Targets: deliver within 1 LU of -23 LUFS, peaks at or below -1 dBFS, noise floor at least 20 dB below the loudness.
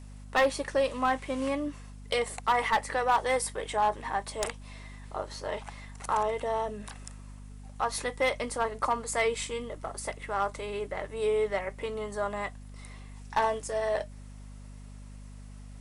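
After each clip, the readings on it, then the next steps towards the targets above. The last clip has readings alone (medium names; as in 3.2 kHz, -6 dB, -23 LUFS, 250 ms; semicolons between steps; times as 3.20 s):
clipped samples 0.3%; clipping level -18.5 dBFS; hum 50 Hz; highest harmonic 250 Hz; hum level -43 dBFS; loudness -30.5 LUFS; peak level -18.5 dBFS; loudness target -23.0 LUFS
-> clip repair -18.5 dBFS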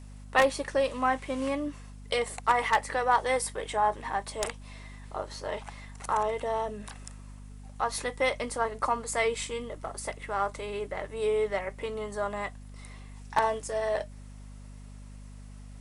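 clipped samples 0.0%; hum 50 Hz; highest harmonic 250 Hz; hum level -43 dBFS
-> hum notches 50/100/150/200/250 Hz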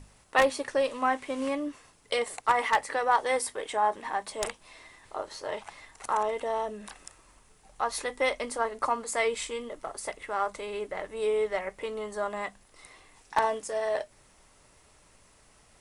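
hum not found; loudness -30.0 LUFS; peak level -9.0 dBFS; loudness target -23.0 LUFS
-> trim +7 dB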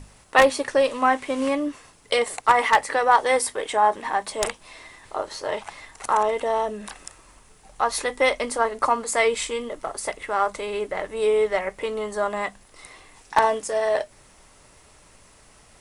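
loudness -23.0 LUFS; peak level -2.0 dBFS; noise floor -53 dBFS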